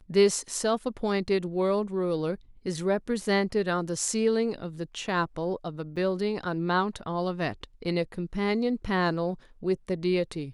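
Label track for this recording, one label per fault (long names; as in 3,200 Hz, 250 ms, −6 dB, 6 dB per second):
5.960000	5.970000	drop-out 6 ms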